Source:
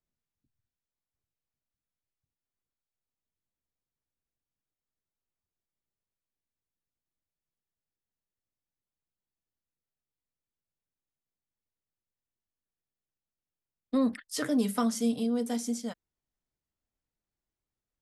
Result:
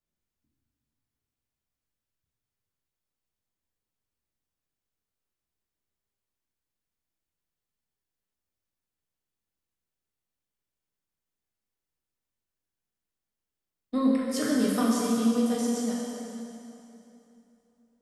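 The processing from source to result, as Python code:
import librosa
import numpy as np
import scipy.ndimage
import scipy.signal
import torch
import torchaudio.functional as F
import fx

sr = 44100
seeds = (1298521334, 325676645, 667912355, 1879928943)

y = fx.rev_plate(x, sr, seeds[0], rt60_s=3.0, hf_ratio=0.85, predelay_ms=0, drr_db=-4.5)
y = y * librosa.db_to_amplitude(-2.0)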